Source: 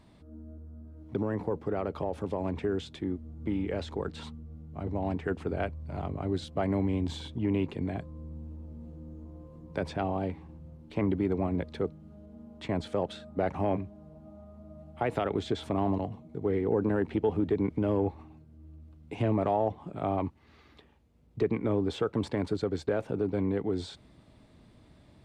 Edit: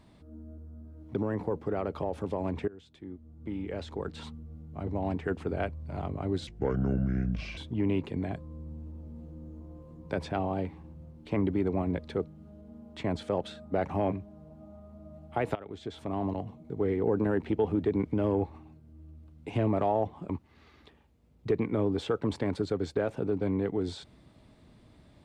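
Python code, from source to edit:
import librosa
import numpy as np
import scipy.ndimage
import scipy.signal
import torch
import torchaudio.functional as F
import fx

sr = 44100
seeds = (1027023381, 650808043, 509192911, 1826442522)

y = fx.edit(x, sr, fx.fade_in_from(start_s=2.68, length_s=1.68, floor_db=-21.0),
    fx.speed_span(start_s=6.47, length_s=0.75, speed=0.68),
    fx.fade_in_from(start_s=15.2, length_s=1.05, floor_db=-17.5),
    fx.cut(start_s=19.94, length_s=0.27), tone=tone)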